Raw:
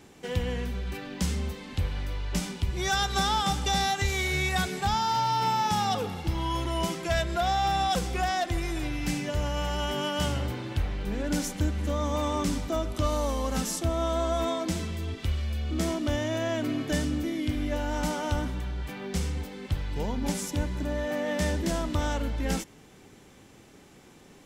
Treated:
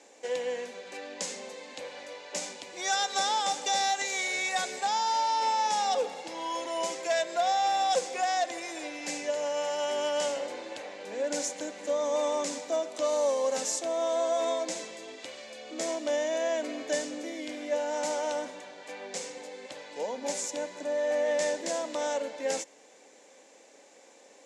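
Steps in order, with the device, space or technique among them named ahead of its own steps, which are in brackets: phone speaker on a table (speaker cabinet 340–8900 Hz, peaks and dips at 370 Hz -10 dB, 540 Hz +9 dB, 1300 Hz -9 dB, 3100 Hz -5 dB, 6900 Hz +6 dB)

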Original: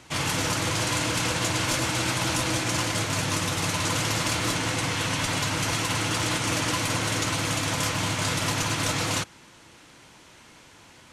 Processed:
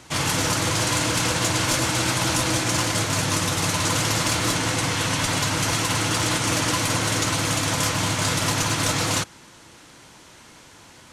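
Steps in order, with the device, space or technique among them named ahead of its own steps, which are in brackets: exciter from parts (in parallel at -10.5 dB: HPF 2300 Hz 24 dB/oct + soft clip -25.5 dBFS, distortion -16 dB); on the sum: gain +3.5 dB

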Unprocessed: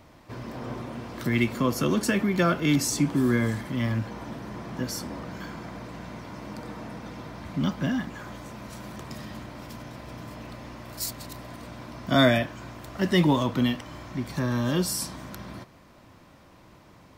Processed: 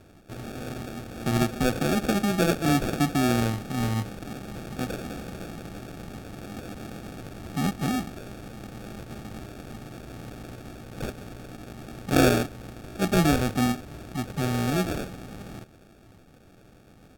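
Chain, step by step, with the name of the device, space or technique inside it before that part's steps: crushed at another speed (playback speed 1.25×; sample-and-hold 35×; playback speed 0.8×)

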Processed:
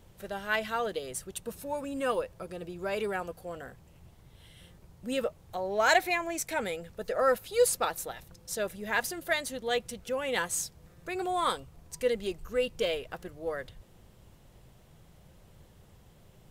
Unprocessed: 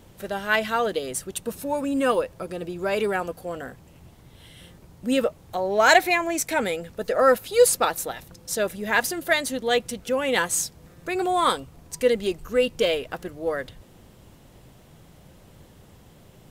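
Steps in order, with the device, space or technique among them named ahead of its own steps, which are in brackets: low shelf boost with a cut just above (low shelf 69 Hz +6.5 dB; bell 270 Hz -5 dB 0.5 oct); gain -7.5 dB

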